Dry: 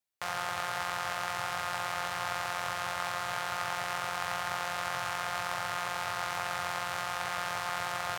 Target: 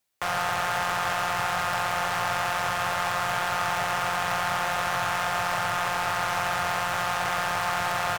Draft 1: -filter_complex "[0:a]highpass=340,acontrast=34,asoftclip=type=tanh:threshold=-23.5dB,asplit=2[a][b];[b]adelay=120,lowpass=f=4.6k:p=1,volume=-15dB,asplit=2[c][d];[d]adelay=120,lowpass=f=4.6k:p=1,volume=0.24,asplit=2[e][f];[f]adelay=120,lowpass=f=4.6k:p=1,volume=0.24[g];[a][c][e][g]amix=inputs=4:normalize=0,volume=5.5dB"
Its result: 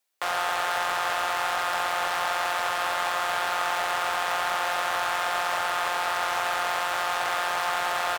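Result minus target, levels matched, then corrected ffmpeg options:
250 Hz band -7.0 dB
-filter_complex "[0:a]acontrast=34,asoftclip=type=tanh:threshold=-23.5dB,asplit=2[a][b];[b]adelay=120,lowpass=f=4.6k:p=1,volume=-15dB,asplit=2[c][d];[d]adelay=120,lowpass=f=4.6k:p=1,volume=0.24,asplit=2[e][f];[f]adelay=120,lowpass=f=4.6k:p=1,volume=0.24[g];[a][c][e][g]amix=inputs=4:normalize=0,volume=5.5dB"

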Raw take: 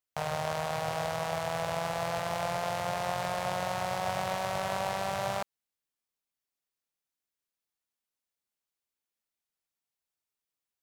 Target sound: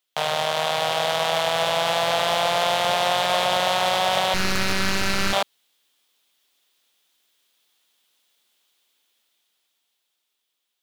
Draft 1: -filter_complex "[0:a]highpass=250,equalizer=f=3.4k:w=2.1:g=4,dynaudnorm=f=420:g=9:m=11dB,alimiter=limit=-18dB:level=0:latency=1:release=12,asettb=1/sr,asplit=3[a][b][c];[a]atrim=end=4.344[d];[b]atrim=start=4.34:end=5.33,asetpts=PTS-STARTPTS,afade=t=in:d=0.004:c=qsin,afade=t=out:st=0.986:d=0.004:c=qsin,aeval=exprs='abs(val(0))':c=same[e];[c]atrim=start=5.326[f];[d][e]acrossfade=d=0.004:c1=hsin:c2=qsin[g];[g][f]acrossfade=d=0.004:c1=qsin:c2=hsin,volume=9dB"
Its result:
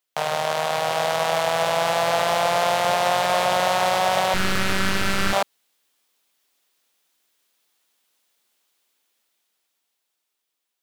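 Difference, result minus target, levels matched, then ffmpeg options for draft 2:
4000 Hz band -4.0 dB
-filter_complex "[0:a]highpass=250,equalizer=f=3.4k:w=2.1:g=11.5,dynaudnorm=f=420:g=9:m=11dB,alimiter=limit=-18dB:level=0:latency=1:release=12,asettb=1/sr,asplit=3[a][b][c];[a]atrim=end=4.344[d];[b]atrim=start=4.34:end=5.33,asetpts=PTS-STARTPTS,afade=t=in:d=0.004:c=qsin,afade=t=out:st=0.986:d=0.004:c=qsin,aeval=exprs='abs(val(0))':c=same[e];[c]atrim=start=5.326[f];[d][e]acrossfade=d=0.004:c1=hsin:c2=qsin[g];[g][f]acrossfade=d=0.004:c1=qsin:c2=hsin,volume=9dB"

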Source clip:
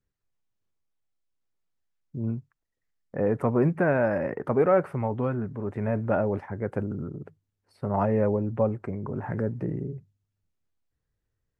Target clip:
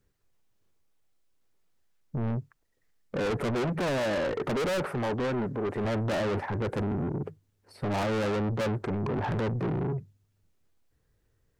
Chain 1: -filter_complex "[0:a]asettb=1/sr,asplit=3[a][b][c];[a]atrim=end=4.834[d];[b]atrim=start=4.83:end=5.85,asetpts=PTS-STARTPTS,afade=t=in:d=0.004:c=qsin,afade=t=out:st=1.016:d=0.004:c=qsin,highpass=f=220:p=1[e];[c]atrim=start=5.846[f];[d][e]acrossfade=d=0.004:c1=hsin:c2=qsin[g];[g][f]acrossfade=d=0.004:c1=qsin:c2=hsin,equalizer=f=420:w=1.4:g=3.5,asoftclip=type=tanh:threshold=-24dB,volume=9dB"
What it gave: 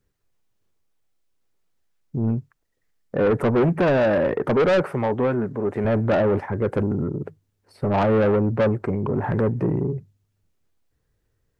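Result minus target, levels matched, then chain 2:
soft clip: distortion -6 dB
-filter_complex "[0:a]asettb=1/sr,asplit=3[a][b][c];[a]atrim=end=4.834[d];[b]atrim=start=4.83:end=5.85,asetpts=PTS-STARTPTS,afade=t=in:d=0.004:c=qsin,afade=t=out:st=1.016:d=0.004:c=qsin,highpass=f=220:p=1[e];[c]atrim=start=5.846[f];[d][e]acrossfade=d=0.004:c1=hsin:c2=qsin[g];[g][f]acrossfade=d=0.004:c1=qsin:c2=hsin,equalizer=f=420:w=1.4:g=3.5,asoftclip=type=tanh:threshold=-36dB,volume=9dB"

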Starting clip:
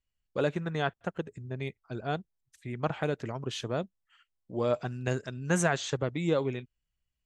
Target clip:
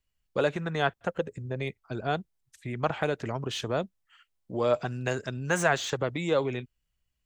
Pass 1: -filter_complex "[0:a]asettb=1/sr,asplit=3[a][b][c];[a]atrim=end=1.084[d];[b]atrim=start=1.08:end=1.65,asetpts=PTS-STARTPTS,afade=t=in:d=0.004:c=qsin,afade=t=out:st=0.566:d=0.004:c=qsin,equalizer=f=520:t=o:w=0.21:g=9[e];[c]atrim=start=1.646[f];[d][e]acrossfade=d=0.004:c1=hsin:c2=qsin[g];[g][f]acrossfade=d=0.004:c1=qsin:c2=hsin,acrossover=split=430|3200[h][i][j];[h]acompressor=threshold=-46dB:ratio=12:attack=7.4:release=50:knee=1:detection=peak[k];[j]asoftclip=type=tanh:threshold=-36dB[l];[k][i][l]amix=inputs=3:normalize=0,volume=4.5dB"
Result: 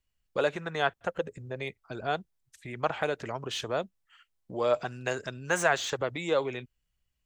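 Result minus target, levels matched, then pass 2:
compressor: peak gain reduction +8 dB
-filter_complex "[0:a]asettb=1/sr,asplit=3[a][b][c];[a]atrim=end=1.084[d];[b]atrim=start=1.08:end=1.65,asetpts=PTS-STARTPTS,afade=t=in:d=0.004:c=qsin,afade=t=out:st=0.566:d=0.004:c=qsin,equalizer=f=520:t=o:w=0.21:g=9[e];[c]atrim=start=1.646[f];[d][e]acrossfade=d=0.004:c1=hsin:c2=qsin[g];[g][f]acrossfade=d=0.004:c1=qsin:c2=hsin,acrossover=split=430|3200[h][i][j];[h]acompressor=threshold=-37dB:ratio=12:attack=7.4:release=50:knee=1:detection=peak[k];[j]asoftclip=type=tanh:threshold=-36dB[l];[k][i][l]amix=inputs=3:normalize=0,volume=4.5dB"

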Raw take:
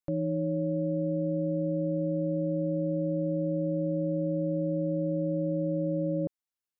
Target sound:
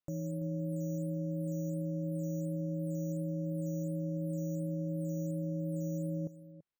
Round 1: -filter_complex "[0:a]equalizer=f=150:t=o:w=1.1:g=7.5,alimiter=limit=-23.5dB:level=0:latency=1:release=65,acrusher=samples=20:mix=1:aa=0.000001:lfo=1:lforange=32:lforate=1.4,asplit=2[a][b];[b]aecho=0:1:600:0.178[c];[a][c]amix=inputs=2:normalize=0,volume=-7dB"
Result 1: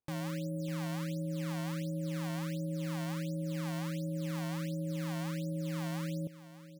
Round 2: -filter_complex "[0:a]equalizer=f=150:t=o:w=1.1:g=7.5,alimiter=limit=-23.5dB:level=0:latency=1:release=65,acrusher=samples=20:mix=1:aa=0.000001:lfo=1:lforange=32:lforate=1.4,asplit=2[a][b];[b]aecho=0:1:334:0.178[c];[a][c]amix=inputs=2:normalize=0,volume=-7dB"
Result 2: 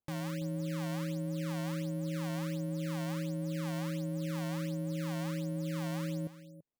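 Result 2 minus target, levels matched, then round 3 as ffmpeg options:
decimation with a swept rate: distortion +15 dB
-filter_complex "[0:a]equalizer=f=150:t=o:w=1.1:g=7.5,alimiter=limit=-23.5dB:level=0:latency=1:release=65,acrusher=samples=4:mix=1:aa=0.000001:lfo=1:lforange=6.4:lforate=1.4,asplit=2[a][b];[b]aecho=0:1:334:0.178[c];[a][c]amix=inputs=2:normalize=0,volume=-7dB"

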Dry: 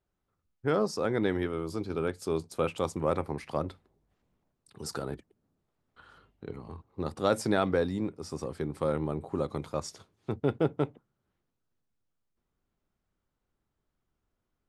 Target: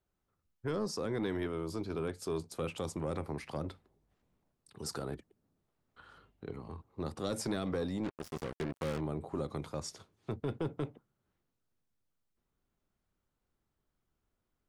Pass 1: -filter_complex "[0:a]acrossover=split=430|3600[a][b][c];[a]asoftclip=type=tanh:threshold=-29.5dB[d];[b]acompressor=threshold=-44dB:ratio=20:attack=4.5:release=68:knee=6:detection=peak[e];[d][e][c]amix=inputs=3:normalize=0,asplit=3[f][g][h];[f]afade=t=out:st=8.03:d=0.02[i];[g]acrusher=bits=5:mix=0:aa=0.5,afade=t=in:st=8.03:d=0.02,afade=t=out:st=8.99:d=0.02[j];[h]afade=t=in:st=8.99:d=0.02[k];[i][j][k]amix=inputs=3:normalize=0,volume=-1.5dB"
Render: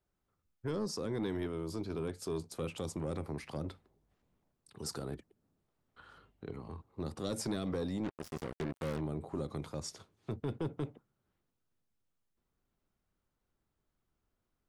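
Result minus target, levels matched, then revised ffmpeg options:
compressor: peak gain reduction +6 dB
-filter_complex "[0:a]acrossover=split=430|3600[a][b][c];[a]asoftclip=type=tanh:threshold=-29.5dB[d];[b]acompressor=threshold=-37.5dB:ratio=20:attack=4.5:release=68:knee=6:detection=peak[e];[d][e][c]amix=inputs=3:normalize=0,asplit=3[f][g][h];[f]afade=t=out:st=8.03:d=0.02[i];[g]acrusher=bits=5:mix=0:aa=0.5,afade=t=in:st=8.03:d=0.02,afade=t=out:st=8.99:d=0.02[j];[h]afade=t=in:st=8.99:d=0.02[k];[i][j][k]amix=inputs=3:normalize=0,volume=-1.5dB"

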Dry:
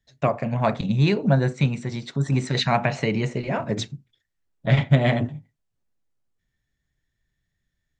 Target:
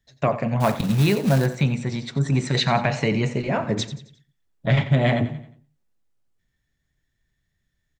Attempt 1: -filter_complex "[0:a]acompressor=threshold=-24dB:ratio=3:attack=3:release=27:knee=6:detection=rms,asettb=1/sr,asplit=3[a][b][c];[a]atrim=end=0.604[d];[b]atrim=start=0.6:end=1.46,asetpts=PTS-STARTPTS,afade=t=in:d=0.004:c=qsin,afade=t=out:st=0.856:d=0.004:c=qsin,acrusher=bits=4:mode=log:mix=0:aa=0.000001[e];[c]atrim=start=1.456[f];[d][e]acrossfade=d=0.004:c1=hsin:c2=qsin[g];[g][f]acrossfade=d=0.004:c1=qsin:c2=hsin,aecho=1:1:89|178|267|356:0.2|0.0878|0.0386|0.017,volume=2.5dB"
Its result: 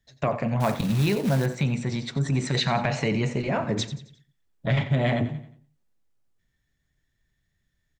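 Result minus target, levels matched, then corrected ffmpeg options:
compressor: peak gain reduction +5 dB
-filter_complex "[0:a]acompressor=threshold=-16.5dB:ratio=3:attack=3:release=27:knee=6:detection=rms,asettb=1/sr,asplit=3[a][b][c];[a]atrim=end=0.604[d];[b]atrim=start=0.6:end=1.46,asetpts=PTS-STARTPTS,afade=t=in:d=0.004:c=qsin,afade=t=out:st=0.856:d=0.004:c=qsin,acrusher=bits=4:mode=log:mix=0:aa=0.000001[e];[c]atrim=start=1.456[f];[d][e]acrossfade=d=0.004:c1=hsin:c2=qsin[g];[g][f]acrossfade=d=0.004:c1=qsin:c2=hsin,aecho=1:1:89|178|267|356:0.2|0.0878|0.0386|0.017,volume=2.5dB"

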